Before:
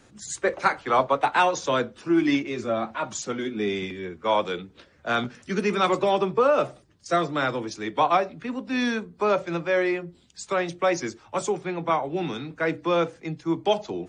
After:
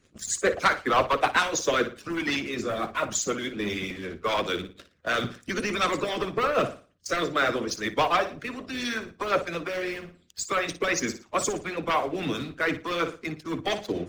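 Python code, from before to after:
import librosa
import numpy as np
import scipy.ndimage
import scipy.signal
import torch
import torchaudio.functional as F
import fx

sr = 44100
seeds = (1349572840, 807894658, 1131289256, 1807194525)

y = fx.spec_quant(x, sr, step_db=15)
y = fx.peak_eq(y, sr, hz=88.0, db=13.0, octaves=0.34)
y = fx.leveller(y, sr, passes=2)
y = fx.peak_eq(y, sr, hz=870.0, db=-14.0, octaves=0.2)
y = fx.room_flutter(y, sr, wall_m=9.9, rt60_s=0.37)
y = fx.hpss(y, sr, part='harmonic', gain_db=-16)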